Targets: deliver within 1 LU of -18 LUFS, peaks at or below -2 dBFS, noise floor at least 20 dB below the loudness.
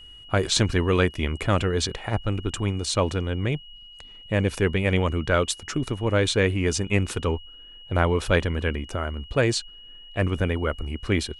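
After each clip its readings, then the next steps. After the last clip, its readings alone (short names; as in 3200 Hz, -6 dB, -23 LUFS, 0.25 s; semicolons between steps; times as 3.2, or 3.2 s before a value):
steady tone 2900 Hz; tone level -44 dBFS; loudness -25.0 LUFS; peak -6.0 dBFS; loudness target -18.0 LUFS
-> notch 2900 Hz, Q 30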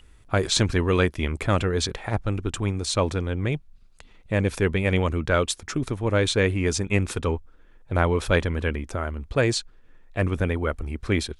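steady tone none; loudness -25.0 LUFS; peak -6.5 dBFS; loudness target -18.0 LUFS
-> gain +7 dB; limiter -2 dBFS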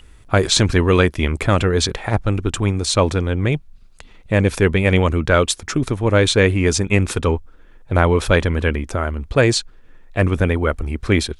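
loudness -18.0 LUFS; peak -2.0 dBFS; noise floor -45 dBFS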